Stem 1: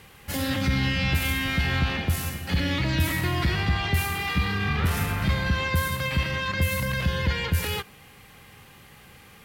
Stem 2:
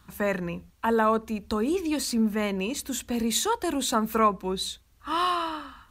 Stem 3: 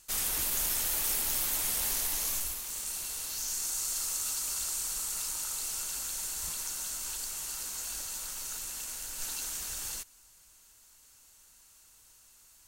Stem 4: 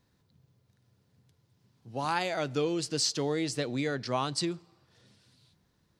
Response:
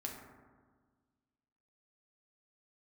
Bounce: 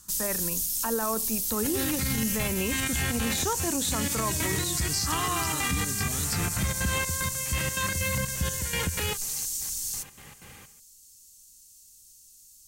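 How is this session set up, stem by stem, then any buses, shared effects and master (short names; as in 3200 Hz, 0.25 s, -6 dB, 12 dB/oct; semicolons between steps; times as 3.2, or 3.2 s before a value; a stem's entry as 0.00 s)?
-4.5 dB, 1.35 s, bus A, no send, step gate "..xx.xx.xxx..x." 187 bpm -12 dB
-5.5 dB, 0.00 s, bus A, no send, dry
+1.0 dB, 0.00 s, bus B, no send, dry
+1.5 dB, 1.95 s, bus B, no send, dry
bus A: 0.0 dB, AGC gain up to 6 dB; limiter -15.5 dBFS, peak gain reduction 8.5 dB
bus B: 0.0 dB, EQ curve 220 Hz 0 dB, 1200 Hz -26 dB, 5400 Hz +5 dB; compressor, threshold -24 dBFS, peak gain reduction 5.5 dB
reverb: off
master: limiter -18 dBFS, peak gain reduction 7 dB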